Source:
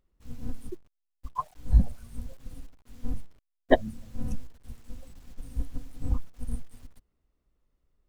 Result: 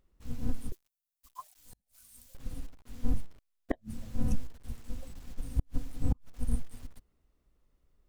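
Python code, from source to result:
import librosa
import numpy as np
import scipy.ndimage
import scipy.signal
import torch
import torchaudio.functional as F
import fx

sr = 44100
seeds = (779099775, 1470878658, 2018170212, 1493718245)

y = fx.gate_flip(x, sr, shuts_db=-17.0, range_db=-38)
y = fx.pre_emphasis(y, sr, coefficient=0.97, at=(0.72, 2.35))
y = F.gain(torch.from_numpy(y), 3.0).numpy()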